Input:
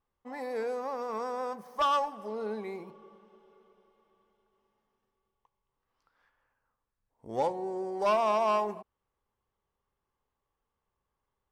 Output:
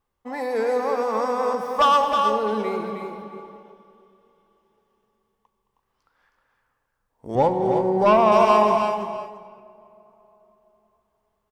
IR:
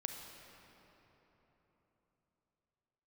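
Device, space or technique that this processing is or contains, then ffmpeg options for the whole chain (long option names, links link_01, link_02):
keyed gated reverb: -filter_complex "[0:a]asettb=1/sr,asplit=3[link_01][link_02][link_03];[link_01]atrim=end=7.354[link_04];[link_02]atrim=start=7.35:end=8.32,asetpts=PTS-STARTPTS,afade=type=in:duration=0.004:curve=qsin,afade=type=out:start_time=0.966:duration=0.004:curve=qsin,bass=frequency=250:gain=10,treble=frequency=4000:gain=-11[link_05];[link_03]atrim=start=8.316[link_06];[link_04][link_05]acrossfade=duration=0.004:curve1=hsin:curve2=qsin[link_07];[link_07][link_06]acrossfade=duration=0.004:curve1=qsin:curve2=hsin,asplit=3[link_08][link_09][link_10];[1:a]atrim=start_sample=2205[link_11];[link_09][link_11]afir=irnorm=-1:irlink=0[link_12];[link_10]apad=whole_len=507788[link_13];[link_12][link_13]sidechaingate=range=-11dB:threshold=-59dB:ratio=16:detection=peak,volume=2.5dB[link_14];[link_08][link_14]amix=inputs=2:normalize=0,aecho=1:1:217|315|340|661:0.178|0.473|0.251|0.106,volume=3.5dB"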